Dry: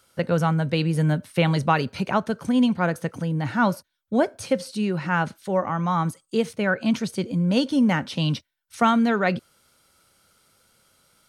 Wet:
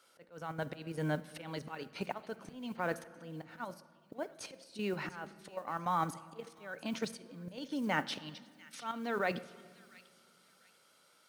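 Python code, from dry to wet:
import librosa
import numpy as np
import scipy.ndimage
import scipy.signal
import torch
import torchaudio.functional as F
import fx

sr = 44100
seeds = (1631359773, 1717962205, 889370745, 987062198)

y = scipy.signal.sosfilt(scipy.signal.butter(2, 310.0, 'highpass', fs=sr, output='sos'), x)
y = fx.high_shelf(y, sr, hz=7800.0, db=-8.5)
y = fx.level_steps(y, sr, step_db=10)
y = fx.auto_swell(y, sr, attack_ms=712.0)
y = fx.mod_noise(y, sr, seeds[0], snr_db=30)
y = fx.echo_wet_highpass(y, sr, ms=694, feedback_pct=30, hz=2500.0, wet_db=-15.0)
y = fx.room_shoebox(y, sr, seeds[1], volume_m3=2800.0, walls='mixed', distance_m=0.43)
y = y * 10.0 ** (2.5 / 20.0)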